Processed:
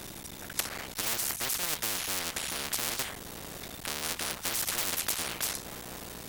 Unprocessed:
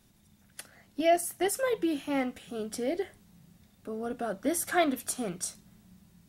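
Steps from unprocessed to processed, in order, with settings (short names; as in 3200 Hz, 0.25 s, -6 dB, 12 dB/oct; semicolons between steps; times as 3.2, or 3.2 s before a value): cycle switcher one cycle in 3, muted; in parallel at -2 dB: compressor, threshold -46 dBFS, peak gain reduction 23.5 dB; on the sum: added harmonics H 5 -13 dB, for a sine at -11 dBFS; spectral compressor 10:1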